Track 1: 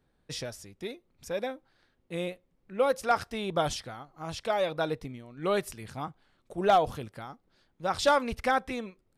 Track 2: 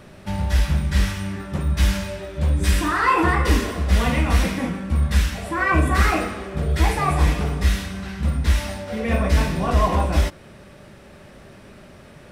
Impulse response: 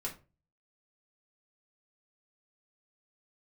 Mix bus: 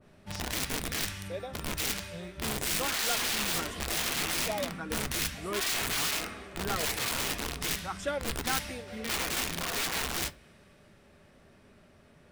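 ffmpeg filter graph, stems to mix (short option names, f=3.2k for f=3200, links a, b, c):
-filter_complex "[0:a]asplit=2[a][b];[b]afreqshift=1.6[c];[a][c]amix=inputs=2:normalize=1,volume=-5.5dB[d];[1:a]aeval=exprs='(mod(7.08*val(0)+1,2)-1)/7.08':c=same,adynamicequalizer=threshold=0.0112:dfrequency=1500:dqfactor=0.7:tfrequency=1500:tqfactor=0.7:attack=5:release=100:ratio=0.375:range=3.5:mode=boostabove:tftype=highshelf,volume=-16dB,asplit=2[e][f];[f]volume=-9.5dB[g];[2:a]atrim=start_sample=2205[h];[g][h]afir=irnorm=-1:irlink=0[i];[d][e][i]amix=inputs=3:normalize=0"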